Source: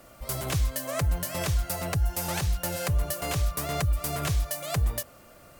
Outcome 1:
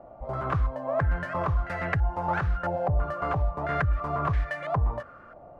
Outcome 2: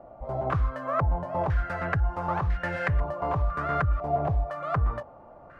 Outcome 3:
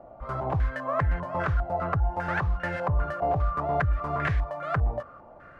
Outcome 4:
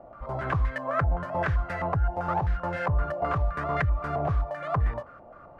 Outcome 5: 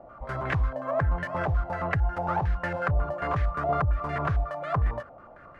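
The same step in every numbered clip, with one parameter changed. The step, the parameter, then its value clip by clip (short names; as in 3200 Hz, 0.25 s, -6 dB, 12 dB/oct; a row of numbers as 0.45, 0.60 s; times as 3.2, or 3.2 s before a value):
stepped low-pass, rate: 3, 2, 5, 7.7, 11 Hz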